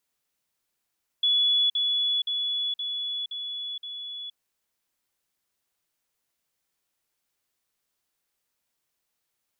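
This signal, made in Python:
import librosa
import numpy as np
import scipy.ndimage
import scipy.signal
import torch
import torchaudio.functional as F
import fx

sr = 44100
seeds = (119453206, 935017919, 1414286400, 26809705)

y = fx.level_ladder(sr, hz=3410.0, from_db=-19.0, step_db=-3.0, steps=6, dwell_s=0.47, gap_s=0.05)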